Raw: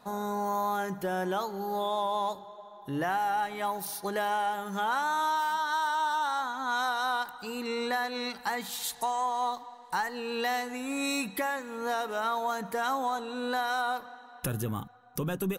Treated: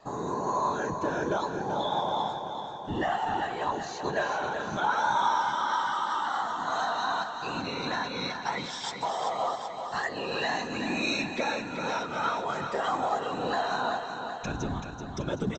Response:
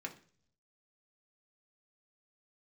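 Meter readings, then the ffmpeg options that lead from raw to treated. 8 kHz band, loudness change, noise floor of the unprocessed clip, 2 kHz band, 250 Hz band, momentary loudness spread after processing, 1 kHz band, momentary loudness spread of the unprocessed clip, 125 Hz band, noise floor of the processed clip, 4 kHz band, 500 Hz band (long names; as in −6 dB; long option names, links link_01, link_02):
−3.0 dB, +1.0 dB, −50 dBFS, +0.5 dB, +1.0 dB, 6 LU, +1.0 dB, 7 LU, +1.5 dB, −39 dBFS, +2.0 dB, +2.0 dB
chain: -filter_complex "[0:a]afftfilt=real='re*pow(10,11/40*sin(2*PI*(1.5*log(max(b,1)*sr/1024/100)/log(2)-(-0.3)*(pts-256)/sr)))':imag='im*pow(10,11/40*sin(2*PI*(1.5*log(max(b,1)*sr/1024/100)/log(2)-(-0.3)*(pts-256)/sr)))':win_size=1024:overlap=0.75,afftfilt=real='hypot(re,im)*cos(2*PI*random(0))':imag='hypot(re,im)*sin(2*PI*random(1))':win_size=512:overlap=0.75,asplit=2[link_01][link_02];[link_02]aecho=0:1:383|766|1149|1532|1915|2298|2681|3064:0.422|0.249|0.147|0.0866|0.0511|0.0301|0.0178|0.0105[link_03];[link_01][link_03]amix=inputs=2:normalize=0,volume=5dB" -ar 16000 -c:a pcm_alaw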